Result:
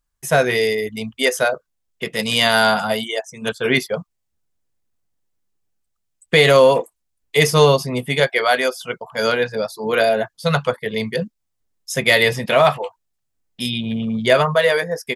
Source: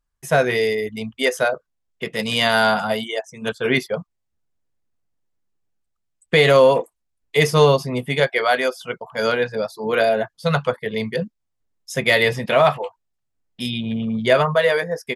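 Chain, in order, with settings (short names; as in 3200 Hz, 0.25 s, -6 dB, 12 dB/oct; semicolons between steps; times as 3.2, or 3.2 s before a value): high shelf 4300 Hz +6.5 dB; gain +1 dB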